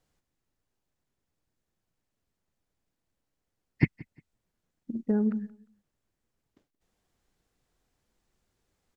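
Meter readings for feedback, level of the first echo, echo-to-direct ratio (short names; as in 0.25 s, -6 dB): 25%, -22.0 dB, -21.5 dB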